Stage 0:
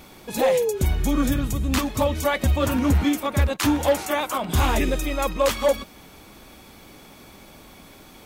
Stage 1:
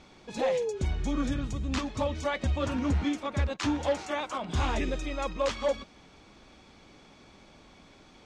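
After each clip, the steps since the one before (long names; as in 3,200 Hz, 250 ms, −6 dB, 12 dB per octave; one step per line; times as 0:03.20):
low-pass filter 6,700 Hz 24 dB per octave
level −8 dB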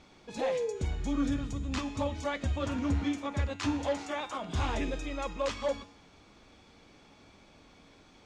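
tuned comb filter 94 Hz, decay 0.91 s, harmonics odd, mix 70%
level +6.5 dB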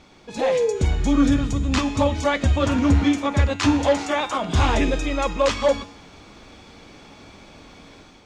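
automatic gain control gain up to 6 dB
level +6.5 dB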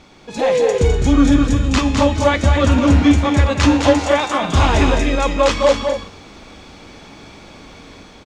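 loudspeakers that aren't time-aligned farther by 71 metres −6 dB, 85 metres −10 dB
level +4.5 dB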